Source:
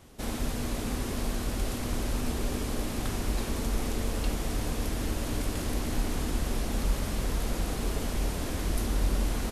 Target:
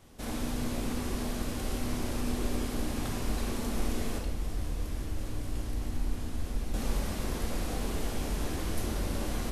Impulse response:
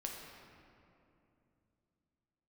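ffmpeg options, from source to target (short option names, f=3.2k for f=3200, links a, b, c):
-filter_complex "[0:a]asettb=1/sr,asplit=3[a][b][c];[a]atrim=end=4.184[d];[b]atrim=start=4.18:end=6.74,asetpts=PTS-STARTPTS,afade=t=in:d=0.004:c=qsin,afade=t=out:st=2.556:d=0.004:c=qsin,acrossover=split=130[e][f];[f]acompressor=threshold=-40dB:ratio=6[g];[e][g]amix=inputs=2:normalize=0[h];[c]atrim=start=6.736[i];[d][h]acrossfade=d=0.004:c1=hsin:c2=qsin[j];[j][i]acrossfade=d=0.004:c1=qsin:c2=hsin[k];[1:a]atrim=start_sample=2205,afade=t=out:st=0.19:d=0.01,atrim=end_sample=8820[l];[k][l]afir=irnorm=-1:irlink=0"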